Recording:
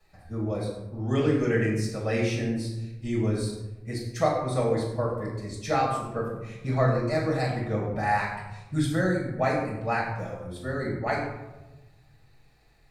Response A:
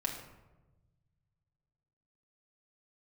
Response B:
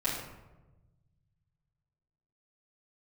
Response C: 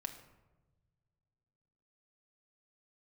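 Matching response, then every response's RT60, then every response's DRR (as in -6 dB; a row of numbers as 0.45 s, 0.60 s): B; 1.1 s, 1.1 s, 1.2 s; 0.5 dB, -9.0 dB, 6.0 dB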